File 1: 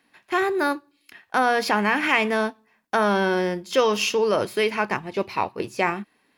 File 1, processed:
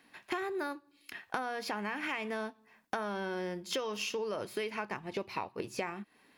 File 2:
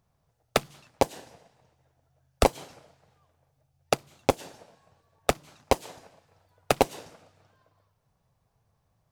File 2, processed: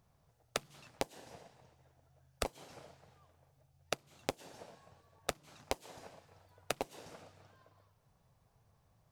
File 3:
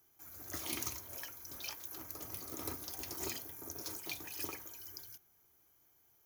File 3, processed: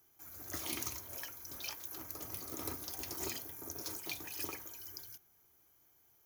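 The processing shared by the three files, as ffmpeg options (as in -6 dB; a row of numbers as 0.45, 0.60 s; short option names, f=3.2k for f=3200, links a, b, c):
-af "acompressor=threshold=-34dB:ratio=12,volume=1dB"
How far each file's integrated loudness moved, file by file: -14.5, -14.5, +0.5 LU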